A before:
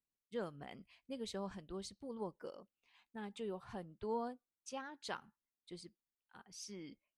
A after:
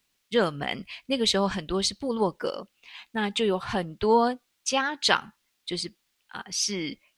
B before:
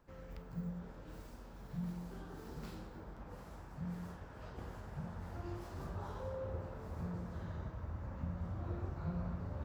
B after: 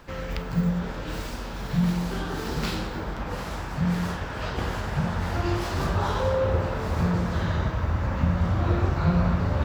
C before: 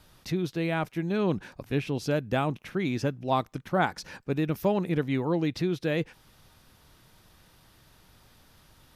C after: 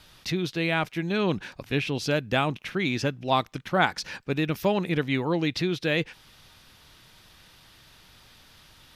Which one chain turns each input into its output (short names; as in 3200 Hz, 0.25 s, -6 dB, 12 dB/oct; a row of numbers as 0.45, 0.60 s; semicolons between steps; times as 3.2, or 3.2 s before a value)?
bell 3200 Hz +9 dB 2.3 oct; match loudness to -27 LUFS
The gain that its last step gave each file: +17.5, +18.0, +0.5 dB